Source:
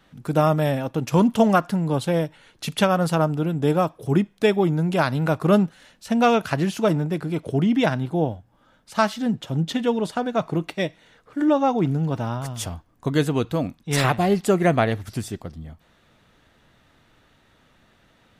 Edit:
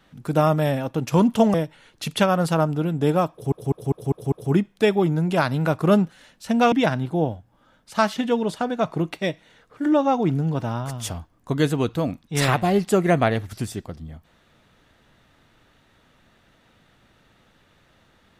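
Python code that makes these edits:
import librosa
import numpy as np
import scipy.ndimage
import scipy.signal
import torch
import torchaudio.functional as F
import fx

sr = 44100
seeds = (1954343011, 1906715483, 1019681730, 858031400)

y = fx.edit(x, sr, fx.cut(start_s=1.54, length_s=0.61),
    fx.stutter(start_s=3.93, slice_s=0.2, count=6),
    fx.cut(start_s=6.33, length_s=1.39),
    fx.cut(start_s=9.16, length_s=0.56), tone=tone)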